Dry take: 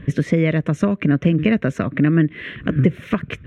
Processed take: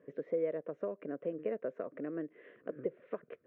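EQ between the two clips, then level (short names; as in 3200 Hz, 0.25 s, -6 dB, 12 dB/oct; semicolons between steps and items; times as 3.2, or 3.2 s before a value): ladder band-pass 560 Hz, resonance 55%; -5.5 dB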